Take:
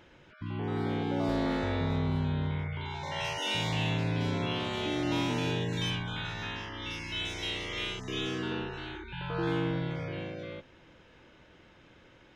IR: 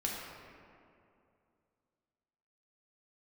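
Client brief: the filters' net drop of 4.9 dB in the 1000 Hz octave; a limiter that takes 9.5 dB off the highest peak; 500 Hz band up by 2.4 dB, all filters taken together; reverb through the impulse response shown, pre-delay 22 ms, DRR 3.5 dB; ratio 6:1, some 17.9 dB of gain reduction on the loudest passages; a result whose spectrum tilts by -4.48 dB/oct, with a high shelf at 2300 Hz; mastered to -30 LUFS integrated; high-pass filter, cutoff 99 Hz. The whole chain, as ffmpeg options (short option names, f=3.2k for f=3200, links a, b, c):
-filter_complex "[0:a]highpass=99,equalizer=f=500:t=o:g=5,equalizer=f=1k:t=o:g=-7.5,highshelf=f=2.3k:g=-3.5,acompressor=threshold=-47dB:ratio=6,alimiter=level_in=21.5dB:limit=-24dB:level=0:latency=1,volume=-21.5dB,asplit=2[a][b];[1:a]atrim=start_sample=2205,adelay=22[c];[b][c]afir=irnorm=-1:irlink=0,volume=-7.5dB[d];[a][d]amix=inputs=2:normalize=0,volume=22.5dB"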